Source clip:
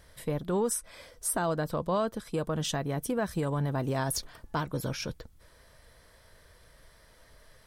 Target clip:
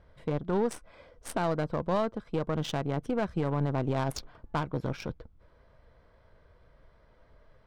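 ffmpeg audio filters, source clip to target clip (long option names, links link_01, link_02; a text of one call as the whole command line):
ffmpeg -i in.wav -af "bandreject=frequency=1800:width=8.9,aeval=exprs='0.126*(cos(1*acos(clip(val(0)/0.126,-1,1)))-cos(1*PI/2))+0.00891*(cos(3*acos(clip(val(0)/0.126,-1,1)))-cos(3*PI/2))+0.0112*(cos(4*acos(clip(val(0)/0.126,-1,1)))-cos(4*PI/2))':channel_layout=same,adynamicsmooth=sensitivity=5:basefreq=1900,volume=1.5dB" out.wav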